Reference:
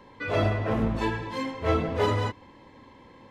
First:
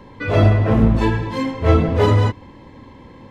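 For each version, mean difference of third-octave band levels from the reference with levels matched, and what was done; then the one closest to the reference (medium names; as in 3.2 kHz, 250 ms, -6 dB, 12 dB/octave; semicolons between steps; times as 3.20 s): 3.0 dB: bass shelf 290 Hz +9.5 dB; trim +5.5 dB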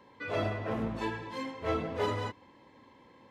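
1.0 dB: high-pass 130 Hz 6 dB/octave; trim -6 dB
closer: second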